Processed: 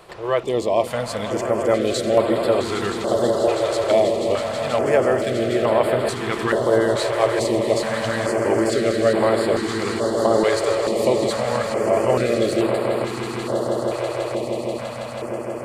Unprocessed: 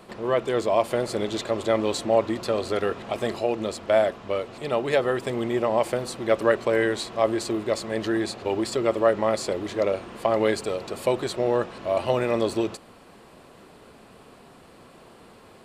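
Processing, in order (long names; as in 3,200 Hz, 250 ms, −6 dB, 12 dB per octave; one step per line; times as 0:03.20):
on a send: echo that builds up and dies away 162 ms, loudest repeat 8, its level −11.5 dB
on the sum: notch on a step sequencer 2.3 Hz 230–6,100 Hz
level +3.5 dB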